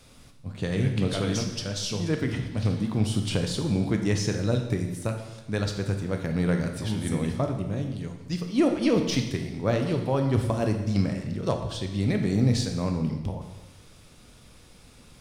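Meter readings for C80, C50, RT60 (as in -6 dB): 9.0 dB, 6.5 dB, 1.1 s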